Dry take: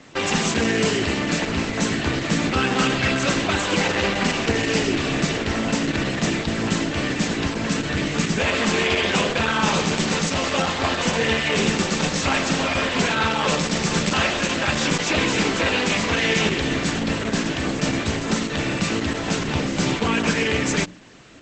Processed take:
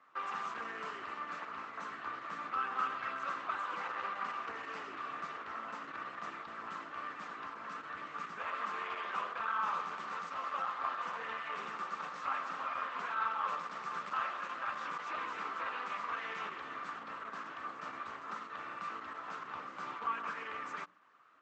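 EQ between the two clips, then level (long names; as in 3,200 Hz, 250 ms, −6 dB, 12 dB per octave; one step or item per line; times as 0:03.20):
resonant band-pass 1,200 Hz, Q 6.3
−4.0 dB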